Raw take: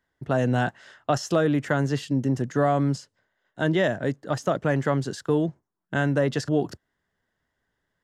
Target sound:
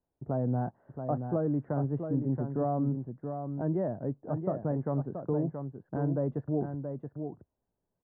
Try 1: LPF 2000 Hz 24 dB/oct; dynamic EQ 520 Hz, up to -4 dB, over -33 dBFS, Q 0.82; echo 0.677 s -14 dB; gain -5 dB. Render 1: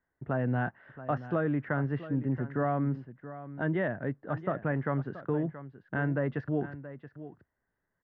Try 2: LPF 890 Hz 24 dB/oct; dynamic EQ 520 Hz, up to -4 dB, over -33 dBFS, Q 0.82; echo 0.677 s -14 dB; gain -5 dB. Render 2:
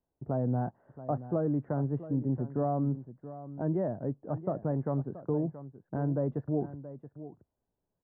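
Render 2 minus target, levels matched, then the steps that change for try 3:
echo-to-direct -7 dB
change: echo 0.677 s -7 dB

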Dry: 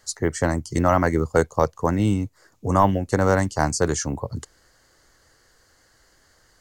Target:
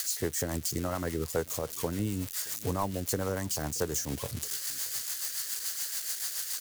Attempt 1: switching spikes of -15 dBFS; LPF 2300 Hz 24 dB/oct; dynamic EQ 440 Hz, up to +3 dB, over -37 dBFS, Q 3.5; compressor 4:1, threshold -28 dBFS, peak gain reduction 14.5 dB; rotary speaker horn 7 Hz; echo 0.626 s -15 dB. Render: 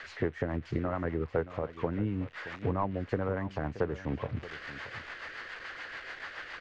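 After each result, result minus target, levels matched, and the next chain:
2000 Hz band +7.5 dB; echo-to-direct +9.5 dB
switching spikes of -15 dBFS; dynamic EQ 440 Hz, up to +3 dB, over -37 dBFS, Q 3.5; compressor 4:1, threshold -28 dBFS, peak gain reduction 14.5 dB; rotary speaker horn 7 Hz; echo 0.626 s -15 dB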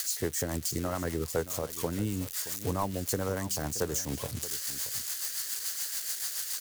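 echo-to-direct +9.5 dB
switching spikes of -15 dBFS; dynamic EQ 440 Hz, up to +3 dB, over -37 dBFS, Q 3.5; compressor 4:1, threshold -28 dBFS, peak gain reduction 14.5 dB; rotary speaker horn 7 Hz; echo 0.626 s -24.5 dB

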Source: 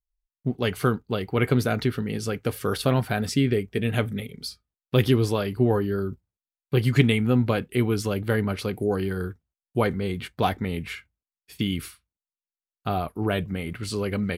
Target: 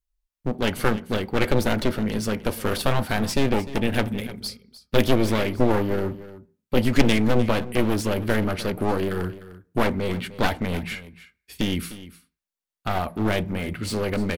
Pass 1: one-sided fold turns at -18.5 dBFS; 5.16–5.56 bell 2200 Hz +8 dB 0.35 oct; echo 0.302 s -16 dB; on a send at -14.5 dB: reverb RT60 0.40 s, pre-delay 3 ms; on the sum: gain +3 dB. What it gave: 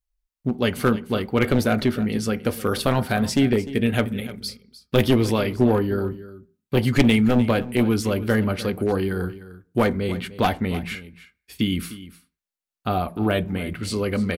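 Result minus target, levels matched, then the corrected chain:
one-sided fold: distortion -13 dB
one-sided fold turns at -28 dBFS; 5.16–5.56 bell 2200 Hz +8 dB 0.35 oct; echo 0.302 s -16 dB; on a send at -14.5 dB: reverb RT60 0.40 s, pre-delay 3 ms; on the sum: gain +3 dB

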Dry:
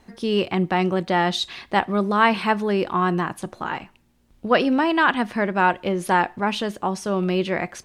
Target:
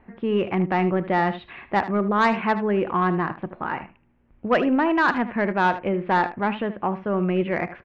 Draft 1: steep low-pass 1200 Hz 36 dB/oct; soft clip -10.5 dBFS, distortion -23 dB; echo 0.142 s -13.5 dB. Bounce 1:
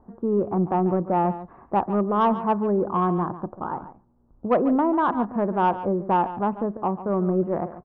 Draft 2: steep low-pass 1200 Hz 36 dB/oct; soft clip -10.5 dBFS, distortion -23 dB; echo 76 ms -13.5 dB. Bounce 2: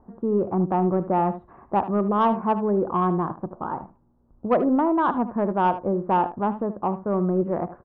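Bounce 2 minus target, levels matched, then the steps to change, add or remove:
2000 Hz band -13.0 dB
change: steep low-pass 2500 Hz 36 dB/oct

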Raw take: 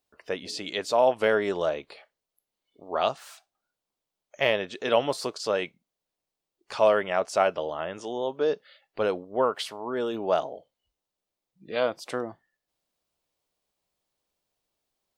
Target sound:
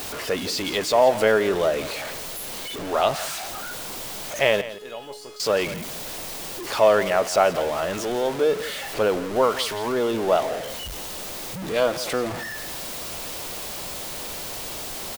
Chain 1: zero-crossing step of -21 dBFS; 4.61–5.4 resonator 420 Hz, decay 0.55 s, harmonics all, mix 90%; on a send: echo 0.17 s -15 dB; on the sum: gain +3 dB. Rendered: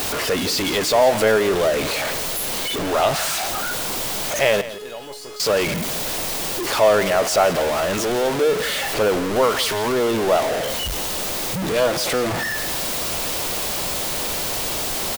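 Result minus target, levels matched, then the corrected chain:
zero-crossing step: distortion +6 dB
zero-crossing step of -29.5 dBFS; 4.61–5.4 resonator 420 Hz, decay 0.55 s, harmonics all, mix 90%; on a send: echo 0.17 s -15 dB; on the sum: gain +3 dB

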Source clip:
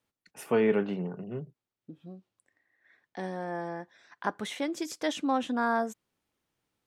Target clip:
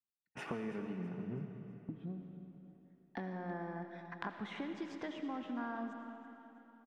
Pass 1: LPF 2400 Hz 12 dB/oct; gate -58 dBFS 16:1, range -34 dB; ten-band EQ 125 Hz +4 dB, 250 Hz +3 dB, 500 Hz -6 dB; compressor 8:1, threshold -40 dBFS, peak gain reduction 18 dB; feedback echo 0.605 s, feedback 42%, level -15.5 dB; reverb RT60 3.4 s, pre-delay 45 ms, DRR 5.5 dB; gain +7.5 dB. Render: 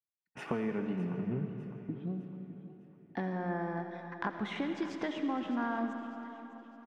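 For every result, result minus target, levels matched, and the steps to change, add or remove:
echo 0.278 s late; compressor: peak gain reduction -7 dB
change: feedback echo 0.327 s, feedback 42%, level -15.5 dB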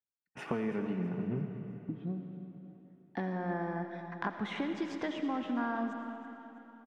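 compressor: peak gain reduction -7 dB
change: compressor 8:1, threshold -48 dBFS, peak gain reduction 25 dB

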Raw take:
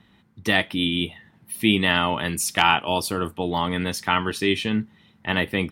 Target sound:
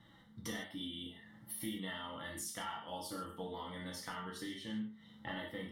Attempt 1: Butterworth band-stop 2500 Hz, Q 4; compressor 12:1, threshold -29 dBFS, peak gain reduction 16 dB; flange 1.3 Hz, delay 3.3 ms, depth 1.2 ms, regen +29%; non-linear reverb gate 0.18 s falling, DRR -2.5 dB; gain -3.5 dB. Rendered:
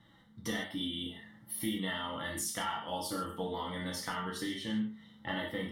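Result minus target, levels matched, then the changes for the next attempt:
compressor: peak gain reduction -7 dB
change: compressor 12:1, threshold -36.5 dBFS, peak gain reduction 23 dB

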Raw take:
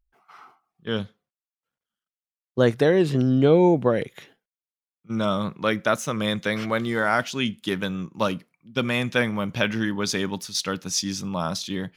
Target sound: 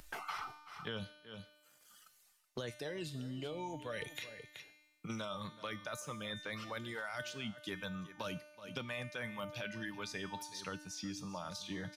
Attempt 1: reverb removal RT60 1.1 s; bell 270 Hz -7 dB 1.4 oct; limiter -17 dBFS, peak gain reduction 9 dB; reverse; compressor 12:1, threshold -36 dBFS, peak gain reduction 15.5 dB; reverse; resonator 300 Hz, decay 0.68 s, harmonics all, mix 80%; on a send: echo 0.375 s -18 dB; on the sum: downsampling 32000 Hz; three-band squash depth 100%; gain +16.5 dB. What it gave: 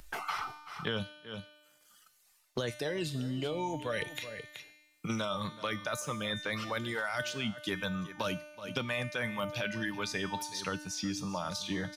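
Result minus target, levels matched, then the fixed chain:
compressor: peak gain reduction -8 dB
reverb removal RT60 1.1 s; bell 270 Hz -7 dB 1.4 oct; limiter -17 dBFS, peak gain reduction 9 dB; reverse; compressor 12:1, threshold -44.5 dBFS, peak gain reduction 23 dB; reverse; resonator 300 Hz, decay 0.68 s, harmonics all, mix 80%; on a send: echo 0.375 s -18 dB; on the sum: downsampling 32000 Hz; three-band squash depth 100%; gain +16.5 dB

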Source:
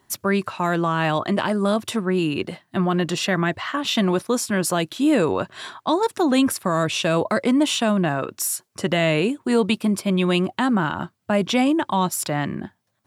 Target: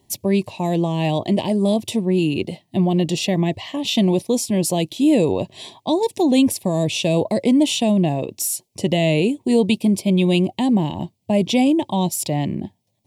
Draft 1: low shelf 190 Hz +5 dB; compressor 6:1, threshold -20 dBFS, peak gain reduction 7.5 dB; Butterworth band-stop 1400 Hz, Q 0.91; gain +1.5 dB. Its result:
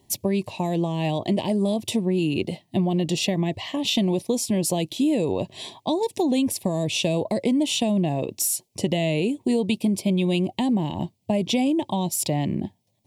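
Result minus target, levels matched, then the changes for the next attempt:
compressor: peak gain reduction +7.5 dB
remove: compressor 6:1, threshold -20 dBFS, peak gain reduction 7.5 dB

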